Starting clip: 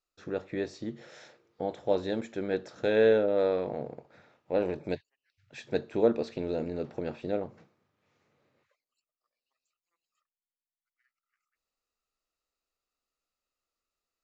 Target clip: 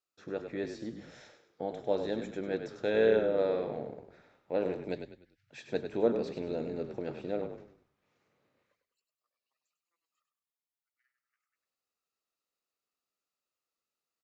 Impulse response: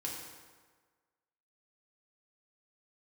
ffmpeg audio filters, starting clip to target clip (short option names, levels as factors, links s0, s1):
-filter_complex "[0:a]highpass=110,asplit=5[s0][s1][s2][s3][s4];[s1]adelay=99,afreqshift=-31,volume=0.398[s5];[s2]adelay=198,afreqshift=-62,volume=0.143[s6];[s3]adelay=297,afreqshift=-93,volume=0.0519[s7];[s4]adelay=396,afreqshift=-124,volume=0.0186[s8];[s0][s5][s6][s7][s8]amix=inputs=5:normalize=0,volume=0.668"